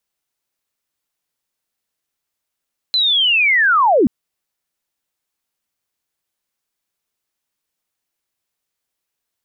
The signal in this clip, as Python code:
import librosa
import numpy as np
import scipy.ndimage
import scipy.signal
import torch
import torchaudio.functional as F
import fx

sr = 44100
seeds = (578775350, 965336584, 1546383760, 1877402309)

y = fx.chirp(sr, length_s=1.13, from_hz=4100.0, to_hz=200.0, law='linear', from_db=-12.5, to_db=-9.0)